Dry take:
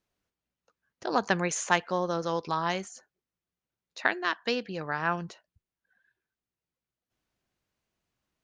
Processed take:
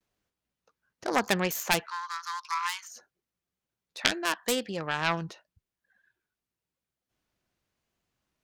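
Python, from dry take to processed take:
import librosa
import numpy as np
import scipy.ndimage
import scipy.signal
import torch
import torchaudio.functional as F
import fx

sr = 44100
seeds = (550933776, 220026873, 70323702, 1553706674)

y = fx.self_delay(x, sr, depth_ms=0.36)
y = fx.vibrato(y, sr, rate_hz=0.91, depth_cents=69.0)
y = fx.cheby1_highpass(y, sr, hz=910.0, order=8, at=(1.86, 2.91))
y = fx.high_shelf(y, sr, hz=5600.0, db=5.0, at=(4.43, 5.24))
y = F.gain(torch.from_numpy(y), 1.5).numpy()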